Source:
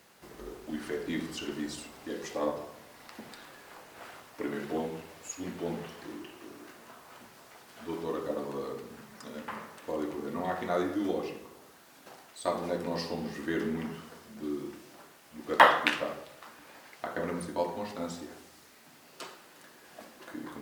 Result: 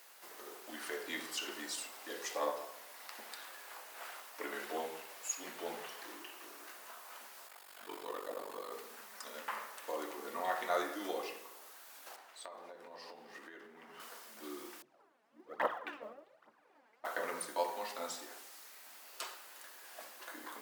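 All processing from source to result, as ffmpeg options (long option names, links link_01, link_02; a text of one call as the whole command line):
ffmpeg -i in.wav -filter_complex "[0:a]asettb=1/sr,asplit=3[link_01][link_02][link_03];[link_01]atrim=end=7.474[link_04];[link_02]atrim=start=7.47:end=8.72,asetpts=PTS-STARTPTS,afade=type=in:duration=0.004:curve=qsin,afade=type=out:start_time=1.246:duration=0.004:curve=qsin,bandreject=frequency=5900:width=8.1,aeval=exprs='val(0)*sin(2*PI*24*n/s)':channel_layout=same[link_05];[link_03]atrim=start=8.716[link_06];[link_04][link_05]acrossfade=duration=0.004:curve1=hsin:curve2=qsin[link_07];[link_07][link_06]acrossfade=duration=0.004:curve1=qsin:curve2=hsin,asettb=1/sr,asplit=3[link_08][link_09][link_10];[link_08]atrim=end=12.164[link_11];[link_09]atrim=start=12.16:end=14,asetpts=PTS-STARTPTS,afade=type=in:duration=0.004:curve=qsin,afade=type=out:start_time=1.836:duration=0.004:curve=qsin,lowpass=frequency=2300:poles=1,acompressor=threshold=-41dB:ratio=16:attack=3.2:release=140:knee=1:detection=peak[link_12];[link_10]atrim=start=13.996[link_13];[link_11][link_12]acrossfade=duration=0.004:curve1=hsin:curve2=qsin[link_14];[link_14][link_13]acrossfade=duration=0.004:curve1=qsin:curve2=hsin,asettb=1/sr,asplit=3[link_15][link_16][link_17];[link_15]atrim=end=14.824[link_18];[link_16]atrim=start=14.82:end=17.05,asetpts=PTS-STARTPTS,afade=type=in:duration=0.004:curve=qsin,afade=type=out:start_time=2.226:duration=0.004:curve=qsin,bandpass=frequency=140:width_type=q:width=0.84,aphaser=in_gain=1:out_gain=1:delay=4.8:decay=0.68:speed=1.2:type=triangular[link_19];[link_17]atrim=start=17.046[link_20];[link_18][link_19]acrossfade=duration=0.004:curve1=hsin:curve2=qsin[link_21];[link_21][link_20]acrossfade=duration=0.004:curve1=qsin:curve2=hsin,highpass=650,highshelf=frequency=10000:gain=9.5" out.wav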